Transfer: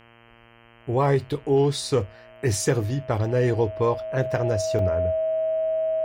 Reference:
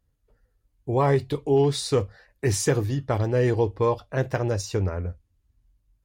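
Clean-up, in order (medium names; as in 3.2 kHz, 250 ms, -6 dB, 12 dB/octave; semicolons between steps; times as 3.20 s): de-hum 116.5 Hz, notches 27; band-stop 640 Hz, Q 30; interpolate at 4.79 s, 2.5 ms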